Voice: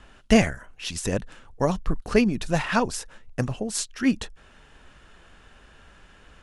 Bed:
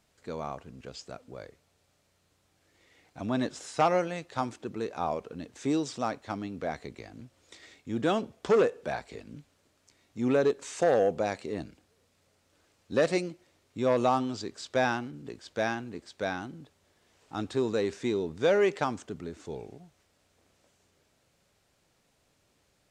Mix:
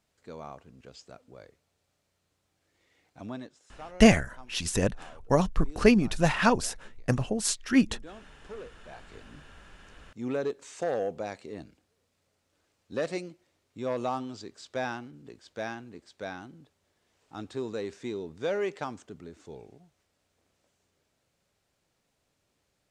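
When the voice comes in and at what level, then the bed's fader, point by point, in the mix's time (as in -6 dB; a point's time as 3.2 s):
3.70 s, 0.0 dB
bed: 3.27 s -6 dB
3.58 s -20 dB
8.74 s -20 dB
9.19 s -6 dB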